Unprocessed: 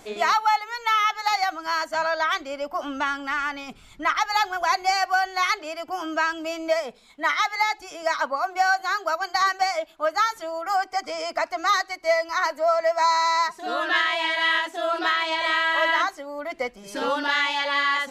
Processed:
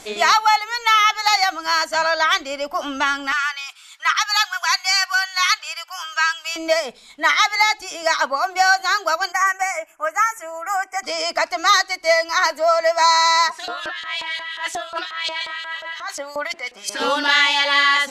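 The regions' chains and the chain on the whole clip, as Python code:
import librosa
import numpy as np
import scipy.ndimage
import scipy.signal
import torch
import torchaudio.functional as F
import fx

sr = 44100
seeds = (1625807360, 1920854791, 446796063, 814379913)

y = fx.chain(x, sr, fx.highpass(hz=1100.0, slope=24),
    fx.notch(hz=2100.0, q=17.0), at=(3.32, 6.56))
y = fx.chain(y, sr, fx.cheby1_bandstop(low_hz=2200.0, high_hz=6900.0, order=2),
    fx.low_shelf(hz=490.0, db=-12.0), at=(9.32, 11.03))
y = fx.chain(y, sr, fx.high_shelf(hz=8200.0, db=11.5),
    fx.over_compress(threshold_db=-31.0, ratio=-1.0),
    fx.filter_lfo_bandpass(shape='saw_up', hz=5.6, low_hz=620.0, high_hz=5600.0, q=0.91), at=(13.5, 17.0))
y = scipy.signal.sosfilt(scipy.signal.bessel(2, 11000.0, 'lowpass', norm='mag', fs=sr, output='sos'), y)
y = fx.high_shelf(y, sr, hz=2200.0, db=10.0)
y = F.gain(torch.from_numpy(y), 3.0).numpy()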